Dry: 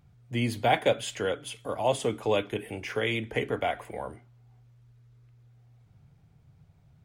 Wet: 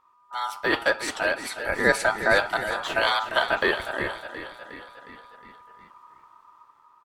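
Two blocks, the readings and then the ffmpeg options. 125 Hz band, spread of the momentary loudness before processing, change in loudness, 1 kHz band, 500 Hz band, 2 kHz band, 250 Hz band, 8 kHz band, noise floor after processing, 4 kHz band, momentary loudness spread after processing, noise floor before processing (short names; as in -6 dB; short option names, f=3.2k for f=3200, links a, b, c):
-7.5 dB, 11 LU, +5.0 dB, +4.5 dB, +2.0 dB, +12.5 dB, 0.0 dB, +4.0 dB, -60 dBFS, +6.0 dB, 16 LU, -60 dBFS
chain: -filter_complex "[0:a]dynaudnorm=f=270:g=7:m=9dB,asplit=7[a][b][c][d][e][f][g];[b]adelay=361,afreqshift=33,volume=-11dB[h];[c]adelay=722,afreqshift=66,volume=-16dB[i];[d]adelay=1083,afreqshift=99,volume=-21.1dB[j];[e]adelay=1444,afreqshift=132,volume=-26.1dB[k];[f]adelay=1805,afreqshift=165,volume=-31.1dB[l];[g]adelay=2166,afreqshift=198,volume=-36.2dB[m];[a][h][i][j][k][l][m]amix=inputs=7:normalize=0,aeval=exprs='val(0)*sin(2*PI*1100*n/s)':c=same"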